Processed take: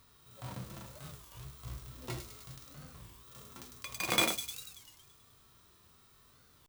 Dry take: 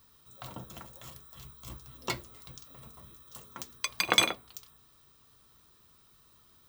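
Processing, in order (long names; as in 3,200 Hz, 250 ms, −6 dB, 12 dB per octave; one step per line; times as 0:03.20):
each half-wave held at its own peak
on a send: delay with a high-pass on its return 102 ms, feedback 63%, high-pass 5,400 Hz, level −6 dB
on the sum: harmonic and percussive parts rebalanced percussive −17 dB
wow of a warped record 33 1/3 rpm, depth 250 cents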